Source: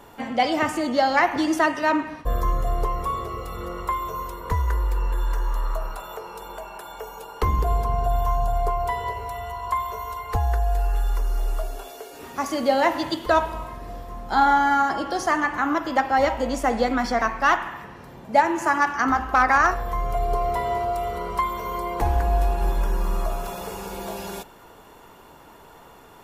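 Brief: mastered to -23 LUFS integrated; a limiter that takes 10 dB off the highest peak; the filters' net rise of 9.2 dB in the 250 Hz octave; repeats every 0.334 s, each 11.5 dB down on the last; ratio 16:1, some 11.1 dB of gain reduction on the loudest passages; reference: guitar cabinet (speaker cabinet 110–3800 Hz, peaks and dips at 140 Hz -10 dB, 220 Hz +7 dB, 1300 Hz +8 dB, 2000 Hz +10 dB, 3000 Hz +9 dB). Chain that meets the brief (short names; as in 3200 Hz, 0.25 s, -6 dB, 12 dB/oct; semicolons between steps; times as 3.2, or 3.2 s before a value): bell 250 Hz +9 dB; compressor 16:1, threshold -23 dBFS; limiter -23.5 dBFS; speaker cabinet 110–3800 Hz, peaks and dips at 140 Hz -10 dB, 220 Hz +7 dB, 1300 Hz +8 dB, 2000 Hz +10 dB, 3000 Hz +9 dB; feedback echo 0.334 s, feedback 27%, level -11.5 dB; gain +7.5 dB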